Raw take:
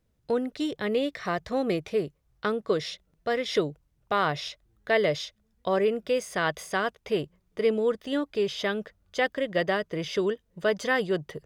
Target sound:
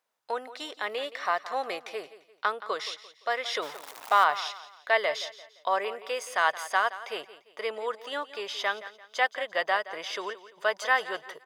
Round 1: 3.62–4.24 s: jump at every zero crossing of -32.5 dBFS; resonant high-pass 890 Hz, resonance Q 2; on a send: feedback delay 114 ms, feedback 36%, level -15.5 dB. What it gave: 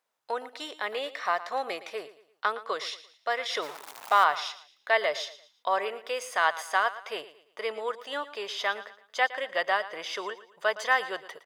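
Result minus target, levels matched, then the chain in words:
echo 58 ms early
3.62–4.24 s: jump at every zero crossing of -32.5 dBFS; resonant high-pass 890 Hz, resonance Q 2; on a send: feedback delay 172 ms, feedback 36%, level -15.5 dB

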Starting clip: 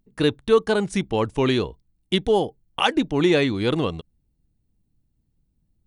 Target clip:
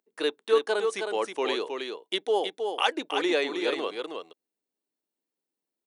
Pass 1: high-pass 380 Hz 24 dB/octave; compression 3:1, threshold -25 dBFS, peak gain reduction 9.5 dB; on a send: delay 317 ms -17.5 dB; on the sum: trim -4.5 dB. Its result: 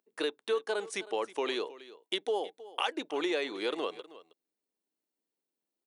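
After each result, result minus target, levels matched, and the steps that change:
compression: peak gain reduction +9.5 dB; echo-to-direct -12 dB
remove: compression 3:1, threshold -25 dBFS, peak gain reduction 9.5 dB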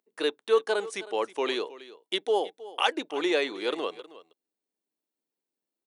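echo-to-direct -12 dB
change: delay 317 ms -5.5 dB

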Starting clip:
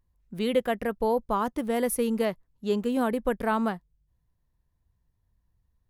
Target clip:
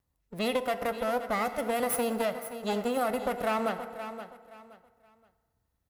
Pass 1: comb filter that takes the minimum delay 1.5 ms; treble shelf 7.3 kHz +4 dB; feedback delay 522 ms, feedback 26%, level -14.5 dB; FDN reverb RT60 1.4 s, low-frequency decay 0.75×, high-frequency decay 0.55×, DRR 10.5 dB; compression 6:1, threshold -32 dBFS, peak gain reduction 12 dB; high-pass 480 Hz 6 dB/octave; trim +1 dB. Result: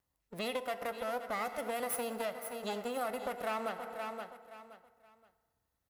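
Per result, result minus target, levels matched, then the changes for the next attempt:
compression: peak gain reduction +6 dB; 125 Hz band -3.0 dB
change: compression 6:1, threshold -25 dBFS, peak gain reduction 6.5 dB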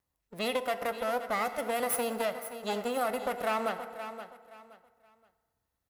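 125 Hz band -4.5 dB
change: high-pass 170 Hz 6 dB/octave

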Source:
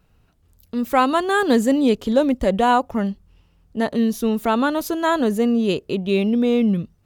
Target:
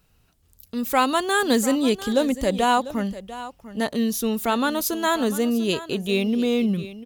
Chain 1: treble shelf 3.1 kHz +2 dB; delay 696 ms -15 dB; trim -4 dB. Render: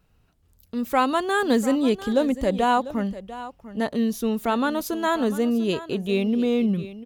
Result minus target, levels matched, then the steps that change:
8 kHz band -8.0 dB
change: treble shelf 3.1 kHz +12 dB

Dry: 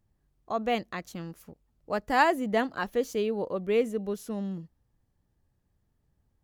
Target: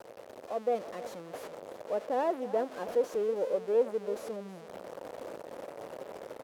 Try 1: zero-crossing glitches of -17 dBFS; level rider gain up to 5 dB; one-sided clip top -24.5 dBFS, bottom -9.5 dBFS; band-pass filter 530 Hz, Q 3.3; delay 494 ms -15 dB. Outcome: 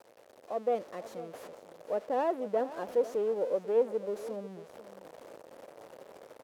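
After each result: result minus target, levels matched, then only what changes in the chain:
echo 173 ms late; zero-crossing glitches: distortion -6 dB
change: delay 321 ms -15 dB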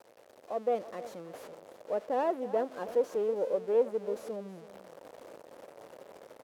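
zero-crossing glitches: distortion -6 dB
change: zero-crossing glitches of -11 dBFS

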